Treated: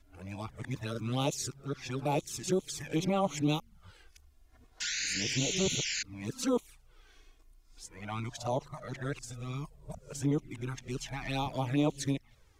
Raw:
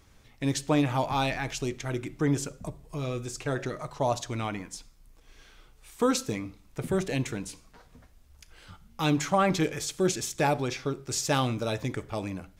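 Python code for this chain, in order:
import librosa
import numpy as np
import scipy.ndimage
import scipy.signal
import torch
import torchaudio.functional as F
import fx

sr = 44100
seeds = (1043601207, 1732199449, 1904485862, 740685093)

y = x[::-1].copy()
y = fx.spec_paint(y, sr, seeds[0], shape='noise', start_s=4.8, length_s=1.23, low_hz=1400.0, high_hz=7400.0, level_db=-28.0)
y = fx.env_flanger(y, sr, rest_ms=3.1, full_db=-22.5)
y = y * librosa.db_to_amplitude(-3.5)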